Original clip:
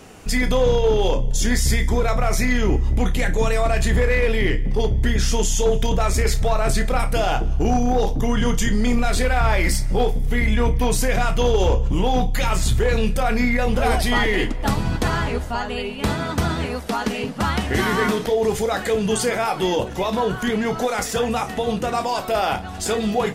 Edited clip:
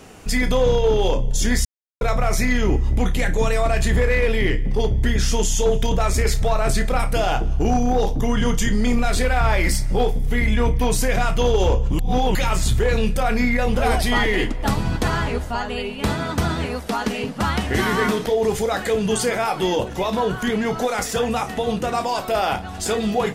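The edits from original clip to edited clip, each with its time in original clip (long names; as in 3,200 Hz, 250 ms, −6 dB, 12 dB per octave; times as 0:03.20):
0:01.65–0:02.01: silence
0:11.99–0:12.35: reverse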